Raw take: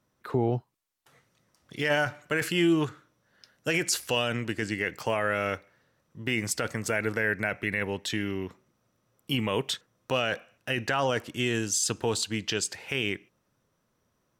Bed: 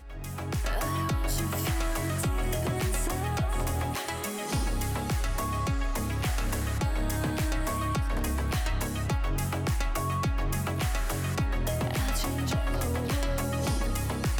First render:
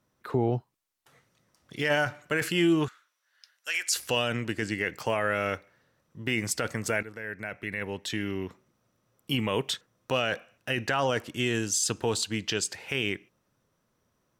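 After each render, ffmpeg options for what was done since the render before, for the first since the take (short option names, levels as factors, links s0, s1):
-filter_complex "[0:a]asettb=1/sr,asplit=3[s0][s1][s2];[s0]atrim=end=2.884[s3];[s1]atrim=start=2.88:end=3.96,asetpts=PTS-STARTPTS,afade=t=in:d=0.004:c=qsin,afade=t=out:st=1.076:d=0.004:c=qsin,highpass=1500[s4];[s2]atrim=start=3.956[s5];[s3][s4]acrossfade=d=0.004:c1=hsin:c2=qsin[s6];[s6][s5]acrossfade=d=0.004:c1=qsin:c2=hsin,asplit=2[s7][s8];[s7]atrim=end=7.03,asetpts=PTS-STARTPTS,afade=t=out:st=7.026:d=0.004:c=hsin:silence=0.16788[s9];[s8]atrim=start=7.03,asetpts=PTS-STARTPTS,afade=t=in:d=1.38:silence=0.16788[s10];[s9][s10]concat=n=2:v=0:a=1"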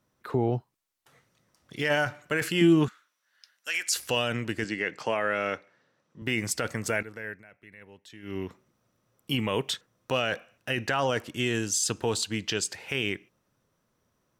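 -filter_complex "[0:a]asettb=1/sr,asplit=3[s0][s1][s2];[s0]atrim=end=2.614[s3];[s1]atrim=start=2.61:end=3.95,asetpts=PTS-STARTPTS,afade=t=in:d=0.004:c=qsin,afade=t=out:st=1.336:d=0.004:c=qsin,equalizer=f=210:w=1.6:g=10[s4];[s2]atrim=start=3.946[s5];[s3][s4]acrossfade=d=0.004:c1=hsin:c2=qsin[s6];[s6][s5]acrossfade=d=0.004:c1=qsin:c2=hsin,asettb=1/sr,asplit=3[s7][s8][s9];[s7]atrim=end=4.644[s10];[s8]atrim=start=4.64:end=6.22,asetpts=PTS-STARTPTS,afade=t=in:d=0.004:c=qsin,afade=t=out:st=1.576:d=0.004:c=qsin,highpass=170,lowpass=6600[s11];[s9]atrim=start=6.216[s12];[s10][s11]acrossfade=d=0.004:c1=hsin:c2=qsin[s13];[s13][s12]acrossfade=d=0.004:c1=qsin:c2=hsin,asplit=3[s14][s15][s16];[s14]atrim=end=7.43,asetpts=PTS-STARTPTS,afade=t=out:st=7.28:d=0.15:silence=0.149624[s17];[s15]atrim=start=7.43:end=8.22,asetpts=PTS-STARTPTS,volume=0.15[s18];[s16]atrim=start=8.22,asetpts=PTS-STARTPTS,afade=t=in:d=0.15:silence=0.149624[s19];[s17][s18][s19]concat=n=3:v=0:a=1"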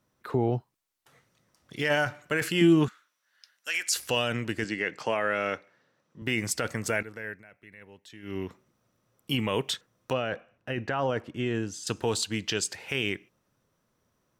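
-filter_complex "[0:a]asettb=1/sr,asplit=3[s0][s1][s2];[s0]atrim=end=10.134[s3];[s1]atrim=start=10.13:end=11.87,asetpts=PTS-STARTPTS,afade=t=in:d=0.004:c=qsin,afade=t=out:st=1.736:d=0.004:c=qsin,lowpass=f=1200:p=1[s4];[s2]atrim=start=11.866[s5];[s3][s4]acrossfade=d=0.004:c1=hsin:c2=qsin[s6];[s6][s5]acrossfade=d=0.004:c1=qsin:c2=hsin"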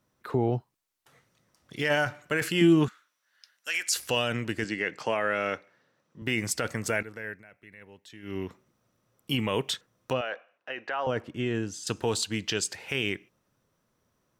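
-filter_complex "[0:a]asettb=1/sr,asplit=3[s0][s1][s2];[s0]atrim=end=10.214[s3];[s1]atrim=start=10.21:end=11.07,asetpts=PTS-STARTPTS,afade=t=in:d=0.004:c=qsin,afade=t=out:st=0.856:d=0.004:c=qsin,highpass=580,lowpass=5000[s4];[s2]atrim=start=11.066[s5];[s3][s4]acrossfade=d=0.004:c1=hsin:c2=qsin[s6];[s6][s5]acrossfade=d=0.004:c1=qsin:c2=hsin"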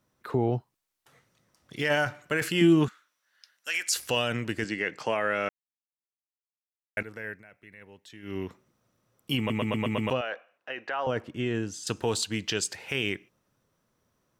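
-filter_complex "[0:a]asplit=9[s0][s1][s2][s3][s4][s5][s6][s7][s8];[s0]atrim=end=5.49,asetpts=PTS-STARTPTS,afade=t=out:st=5.486:d=0.004:c=hsin[s9];[s1]atrim=start=5.49:end=6.97,asetpts=PTS-STARTPTS,volume=0[s10];[s2]atrim=start=6.97:end=9.502,asetpts=PTS-STARTPTS,afade=t=in:d=0.004:c=hsin[s11];[s3]atrim=start=9.378:end=9.502[s12];[s4]atrim=start=9.378:end=9.502[s13];[s5]atrim=start=9.378:end=9.502[s14];[s6]atrim=start=9.378:end=9.502[s15];[s7]atrim=start=9.378:end=9.502[s16];[s8]atrim=start=10.098[s17];[s9][s10][s11]concat=n=3:v=0:a=1[s18];[s18][s12]acrossfade=d=0.004:c1=hsin:c2=hsin[s19];[s19][s13]acrossfade=d=0.004:c1=hsin:c2=hsin[s20];[s20][s14]acrossfade=d=0.004:c1=hsin:c2=hsin[s21];[s21][s15]acrossfade=d=0.004:c1=hsin:c2=hsin[s22];[s22][s16]acrossfade=d=0.004:c1=hsin:c2=hsin[s23];[s23][s17]acrossfade=d=0.004:c1=hsin:c2=hsin"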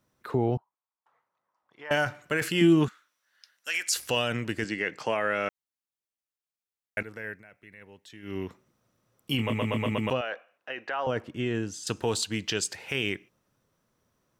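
-filter_complex "[0:a]asettb=1/sr,asplit=3[s0][s1][s2];[s0]atrim=end=0.574[s3];[s1]atrim=start=0.57:end=1.91,asetpts=PTS-STARTPTS,afade=t=in:d=0.004:c=qsin,afade=t=out:st=1.336:d=0.004:c=qsin,bandpass=f=970:t=q:w=3.2[s4];[s2]atrim=start=1.906[s5];[s3][s4]acrossfade=d=0.004:c1=hsin:c2=qsin[s6];[s6][s5]acrossfade=d=0.004:c1=qsin:c2=hsin,asettb=1/sr,asplit=3[s7][s8][s9];[s7]atrim=end=9.364[s10];[s8]atrim=start=9.36:end=9.92,asetpts=PTS-STARTPTS,afade=t=in:d=0.004:c=qsin,afade=t=out:st=0.556:d=0.004:c=qsin,asplit=2[s11][s12];[s12]adelay=26,volume=0.501[s13];[s11][s13]amix=inputs=2:normalize=0,atrim=end_sample=24696[s14];[s9]atrim=start=9.916[s15];[s10][s14]acrossfade=d=0.004:c1=hsin:c2=qsin[s16];[s16][s15]acrossfade=d=0.004:c1=qsin:c2=hsin"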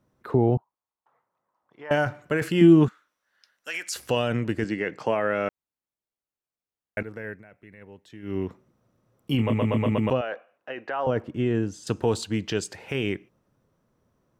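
-af "tiltshelf=f=1400:g=6"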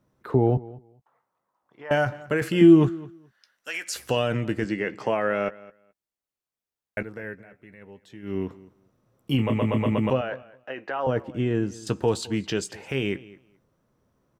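-filter_complex "[0:a]asplit=2[s0][s1];[s1]adelay=15,volume=0.251[s2];[s0][s2]amix=inputs=2:normalize=0,asplit=2[s3][s4];[s4]adelay=213,lowpass=f=4900:p=1,volume=0.1,asplit=2[s5][s6];[s6]adelay=213,lowpass=f=4900:p=1,volume=0.16[s7];[s3][s5][s7]amix=inputs=3:normalize=0"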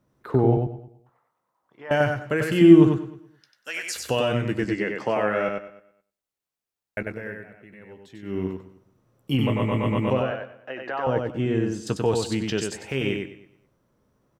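-af "aecho=1:1:95|190|285:0.631|0.114|0.0204"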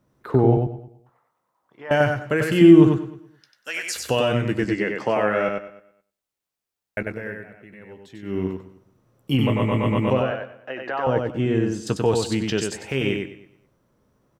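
-af "volume=1.33,alimiter=limit=0.794:level=0:latency=1"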